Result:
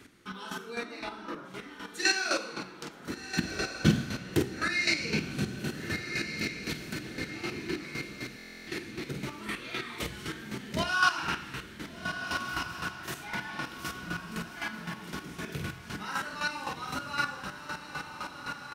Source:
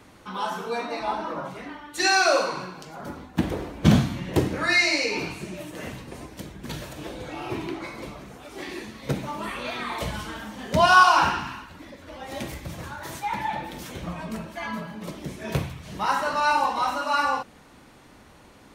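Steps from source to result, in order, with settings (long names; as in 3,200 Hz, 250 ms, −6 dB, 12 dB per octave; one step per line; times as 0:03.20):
low-shelf EQ 140 Hz −6.5 dB
double-tracking delay 47 ms −5 dB
feedback delay with all-pass diffusion 1,451 ms, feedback 51%, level −7 dB
square-wave tremolo 3.9 Hz, depth 65%, duty 25%
flanger 1.7 Hz, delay 2.9 ms, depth 4.3 ms, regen −87%
in parallel at −2.5 dB: downward compressor, threshold −35 dBFS, peak gain reduction 18 dB
on the sum: flat-topped bell 760 Hz −10.5 dB 1.3 octaves
buffer that repeats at 0:08.37, samples 1,024, times 12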